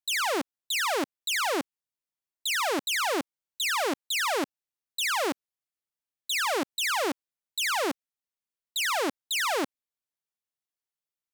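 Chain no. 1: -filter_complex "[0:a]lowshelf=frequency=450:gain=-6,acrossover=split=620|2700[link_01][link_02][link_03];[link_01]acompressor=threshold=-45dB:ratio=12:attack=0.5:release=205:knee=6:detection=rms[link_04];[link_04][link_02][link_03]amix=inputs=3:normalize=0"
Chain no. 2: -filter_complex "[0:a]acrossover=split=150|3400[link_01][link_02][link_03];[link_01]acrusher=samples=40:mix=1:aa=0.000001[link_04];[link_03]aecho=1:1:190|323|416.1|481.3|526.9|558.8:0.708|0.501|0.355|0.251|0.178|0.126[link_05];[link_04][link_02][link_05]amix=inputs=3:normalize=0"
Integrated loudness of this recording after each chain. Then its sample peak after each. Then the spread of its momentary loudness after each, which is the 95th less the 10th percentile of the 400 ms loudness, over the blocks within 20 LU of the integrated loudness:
−29.0, −28.0 LKFS; −21.0, −14.5 dBFS; 11, 12 LU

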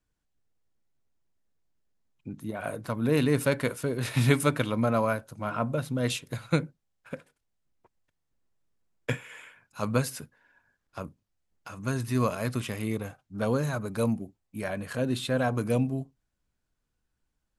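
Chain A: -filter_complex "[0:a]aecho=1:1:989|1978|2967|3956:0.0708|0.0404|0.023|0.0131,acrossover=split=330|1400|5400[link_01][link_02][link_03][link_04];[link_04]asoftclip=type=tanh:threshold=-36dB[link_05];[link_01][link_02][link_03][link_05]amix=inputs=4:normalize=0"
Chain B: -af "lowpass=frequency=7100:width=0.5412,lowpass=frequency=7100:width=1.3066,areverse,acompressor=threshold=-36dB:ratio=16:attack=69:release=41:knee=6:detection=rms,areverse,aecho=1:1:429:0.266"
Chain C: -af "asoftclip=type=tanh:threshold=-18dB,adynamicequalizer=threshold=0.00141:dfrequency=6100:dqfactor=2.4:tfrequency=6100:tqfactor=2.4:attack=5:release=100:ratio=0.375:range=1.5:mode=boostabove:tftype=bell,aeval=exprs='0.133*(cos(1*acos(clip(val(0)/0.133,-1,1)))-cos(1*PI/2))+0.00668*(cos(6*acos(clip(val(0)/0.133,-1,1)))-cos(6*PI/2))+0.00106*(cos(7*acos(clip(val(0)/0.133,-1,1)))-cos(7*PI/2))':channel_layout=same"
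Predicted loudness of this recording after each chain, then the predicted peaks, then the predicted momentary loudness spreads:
−29.5, −37.0, −31.0 LKFS; −8.0, −19.0, −17.5 dBFS; 18, 13, 17 LU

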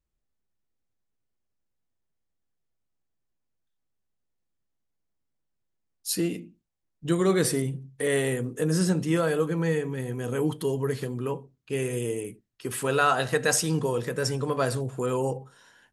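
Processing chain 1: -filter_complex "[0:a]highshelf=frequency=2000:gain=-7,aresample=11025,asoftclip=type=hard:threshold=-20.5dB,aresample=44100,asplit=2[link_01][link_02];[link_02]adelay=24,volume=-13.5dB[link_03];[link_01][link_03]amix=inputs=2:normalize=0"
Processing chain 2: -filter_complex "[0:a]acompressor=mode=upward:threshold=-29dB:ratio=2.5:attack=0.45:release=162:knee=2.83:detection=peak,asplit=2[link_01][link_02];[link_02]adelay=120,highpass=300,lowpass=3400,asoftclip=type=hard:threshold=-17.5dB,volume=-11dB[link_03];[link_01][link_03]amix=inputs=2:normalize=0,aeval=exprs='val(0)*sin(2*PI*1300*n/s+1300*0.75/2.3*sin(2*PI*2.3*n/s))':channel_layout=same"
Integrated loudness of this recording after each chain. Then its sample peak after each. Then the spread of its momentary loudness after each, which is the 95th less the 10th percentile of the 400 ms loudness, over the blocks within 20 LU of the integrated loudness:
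−28.5, −28.5 LKFS; −18.0, −9.0 dBFS; 9, 12 LU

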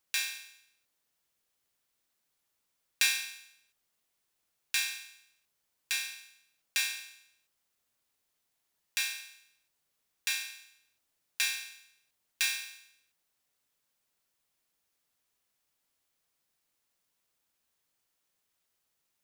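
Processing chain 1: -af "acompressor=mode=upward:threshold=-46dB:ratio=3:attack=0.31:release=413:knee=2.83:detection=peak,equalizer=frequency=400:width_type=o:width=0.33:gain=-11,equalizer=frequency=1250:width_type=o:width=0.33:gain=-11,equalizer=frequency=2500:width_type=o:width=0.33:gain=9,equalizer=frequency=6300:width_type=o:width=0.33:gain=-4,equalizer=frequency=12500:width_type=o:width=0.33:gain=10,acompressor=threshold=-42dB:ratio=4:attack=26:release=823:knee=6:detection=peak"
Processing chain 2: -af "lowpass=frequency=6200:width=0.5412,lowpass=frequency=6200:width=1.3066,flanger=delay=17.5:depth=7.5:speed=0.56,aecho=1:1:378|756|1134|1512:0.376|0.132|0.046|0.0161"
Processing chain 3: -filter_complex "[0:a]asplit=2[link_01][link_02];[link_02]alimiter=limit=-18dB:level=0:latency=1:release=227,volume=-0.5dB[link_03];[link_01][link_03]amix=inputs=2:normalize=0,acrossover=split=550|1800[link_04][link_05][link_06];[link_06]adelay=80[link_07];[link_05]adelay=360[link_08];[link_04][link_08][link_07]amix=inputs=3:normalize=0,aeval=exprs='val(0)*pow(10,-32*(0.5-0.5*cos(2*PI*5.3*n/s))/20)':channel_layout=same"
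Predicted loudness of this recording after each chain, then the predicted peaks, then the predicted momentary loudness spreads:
−41.0, −38.5, −37.5 LKFS; −5.0, −15.5, −12.5 dBFS; 20, 18, 18 LU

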